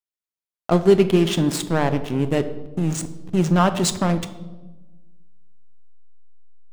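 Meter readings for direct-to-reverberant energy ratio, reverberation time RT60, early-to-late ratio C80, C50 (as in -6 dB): 10.0 dB, 1.2 s, 15.0 dB, 13.0 dB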